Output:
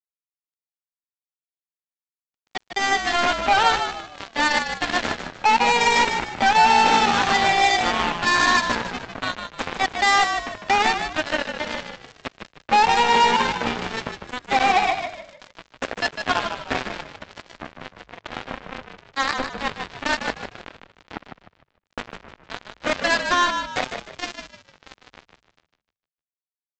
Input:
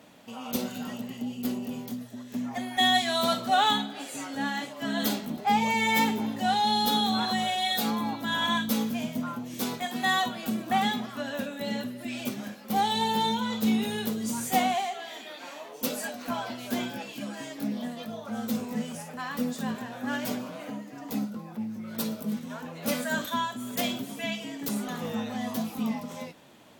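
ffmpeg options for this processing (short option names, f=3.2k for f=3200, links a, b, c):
-filter_complex "[0:a]highpass=460,highshelf=f=2.4k:t=q:w=1.5:g=-11,afftfilt=real='re*gte(hypot(re,im),0.00631)':imag='im*gte(hypot(re,im),0.00631)':win_size=1024:overlap=0.75,equalizer=f=4.9k:w=6.3:g=-8,asplit=2[a][b];[b]acompressor=threshold=-41dB:ratio=6,volume=1dB[c];[a][c]amix=inputs=2:normalize=0,alimiter=limit=-21dB:level=0:latency=1:release=128,dynaudnorm=f=370:g=13:m=10dB,asetrate=46722,aresample=44100,atempo=0.943874,aresample=16000,acrusher=bits=2:mix=0:aa=0.5,aresample=44100,asplit=5[d][e][f][g][h];[e]adelay=152,afreqshift=-54,volume=-7dB[i];[f]adelay=304,afreqshift=-108,volume=-16.4dB[j];[g]adelay=456,afreqshift=-162,volume=-25.7dB[k];[h]adelay=608,afreqshift=-216,volume=-35.1dB[l];[d][i][j][k][l]amix=inputs=5:normalize=0"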